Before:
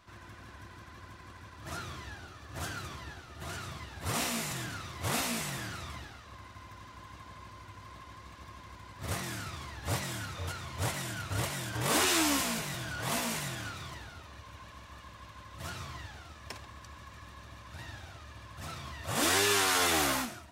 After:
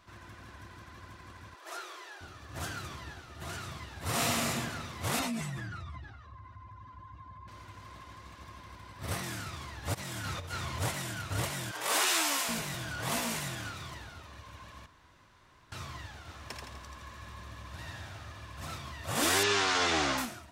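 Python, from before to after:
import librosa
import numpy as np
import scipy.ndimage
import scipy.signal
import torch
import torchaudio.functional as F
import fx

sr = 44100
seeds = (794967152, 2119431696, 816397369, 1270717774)

y = fx.ellip_highpass(x, sr, hz=360.0, order=4, stop_db=40, at=(1.55, 2.21))
y = fx.reverb_throw(y, sr, start_s=4.04, length_s=0.45, rt60_s=1.6, drr_db=-1.5)
y = fx.spec_expand(y, sr, power=1.8, at=(5.19, 7.48))
y = fx.notch(y, sr, hz=6900.0, q=12.0, at=(8.56, 9.24))
y = fx.over_compress(y, sr, threshold_db=-40.0, ratio=-0.5, at=(9.93, 10.78), fade=0.02)
y = fx.highpass(y, sr, hz=560.0, slope=12, at=(11.71, 12.49))
y = fx.echo_split(y, sr, split_hz=1000.0, low_ms=120, high_ms=83, feedback_pct=52, wet_db=-3.5, at=(16.26, 18.76), fade=0.02)
y = fx.lowpass(y, sr, hz=6300.0, slope=24, at=(19.43, 20.18))
y = fx.edit(y, sr, fx.room_tone_fill(start_s=14.86, length_s=0.86), tone=tone)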